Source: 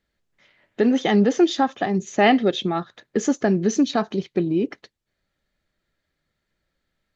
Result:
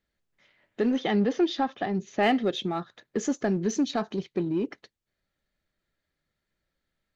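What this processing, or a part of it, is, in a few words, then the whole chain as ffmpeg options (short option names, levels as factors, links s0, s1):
parallel distortion: -filter_complex "[0:a]asplit=2[s0][s1];[s1]asoftclip=type=hard:threshold=0.0841,volume=0.376[s2];[s0][s2]amix=inputs=2:normalize=0,asettb=1/sr,asplit=3[s3][s4][s5];[s3]atrim=end=0.964[s6];[s4]atrim=start=0.96:end=2.23,asetpts=PTS-STARTPTS,afade=t=in:d=0.004:c=qsin,afade=t=out:st=1.266:d=0.004:c=qsin,lowpass=f=5200:w=0.5412,lowpass=f=5200:w=1.3066[s7];[s5]atrim=start=2.226[s8];[s6][s7]acrossfade=d=0.004:c1=hsin:c2=qsin[s9];[s9][s8]acrossfade=d=0.004:c1=qsin:c2=hsin,volume=0.398"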